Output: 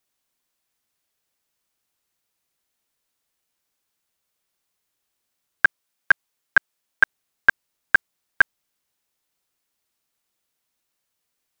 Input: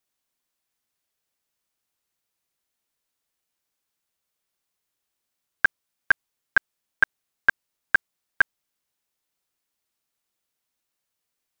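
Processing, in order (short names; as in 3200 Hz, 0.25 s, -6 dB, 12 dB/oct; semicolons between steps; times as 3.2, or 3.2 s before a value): 5.65–7.03 low shelf 230 Hz -6 dB; gain +3.5 dB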